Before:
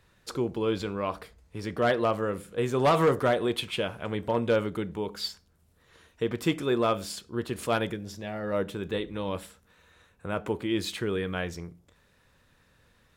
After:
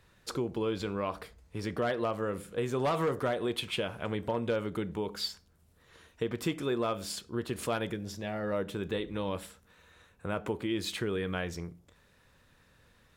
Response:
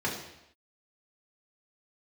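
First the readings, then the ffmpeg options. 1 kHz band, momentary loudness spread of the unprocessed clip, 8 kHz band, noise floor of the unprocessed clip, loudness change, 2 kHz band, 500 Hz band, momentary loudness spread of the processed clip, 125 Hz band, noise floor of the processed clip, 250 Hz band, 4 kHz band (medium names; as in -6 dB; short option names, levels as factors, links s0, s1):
-6.0 dB, 12 LU, -1.5 dB, -65 dBFS, -4.5 dB, -4.5 dB, -5.0 dB, 7 LU, -3.5 dB, -65 dBFS, -4.0 dB, -3.0 dB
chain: -af "acompressor=threshold=0.0316:ratio=2.5"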